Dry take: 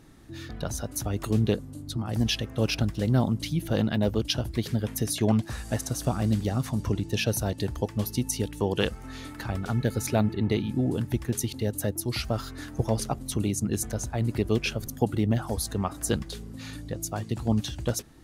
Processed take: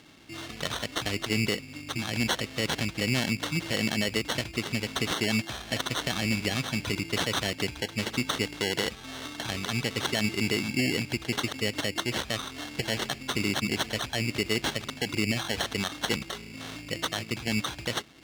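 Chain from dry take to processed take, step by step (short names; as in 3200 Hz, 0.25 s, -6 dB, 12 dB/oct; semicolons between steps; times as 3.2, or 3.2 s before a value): sample-and-hold 18×; weighting filter D; limiter -12 dBFS, peak gain reduction 10 dB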